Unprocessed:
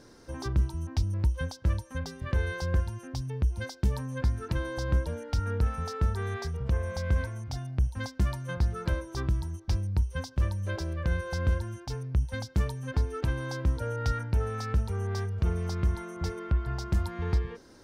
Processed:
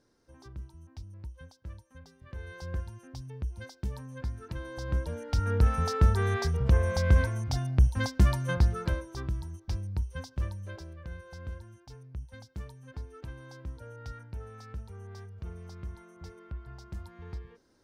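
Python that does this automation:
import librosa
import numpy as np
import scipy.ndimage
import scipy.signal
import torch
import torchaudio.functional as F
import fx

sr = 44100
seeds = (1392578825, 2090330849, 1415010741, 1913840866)

y = fx.gain(x, sr, db=fx.line((2.24, -16.5), (2.68, -8.0), (4.56, -8.0), (5.75, 5.0), (8.5, 5.0), (9.19, -5.0), (10.41, -5.0), (11.02, -13.5)))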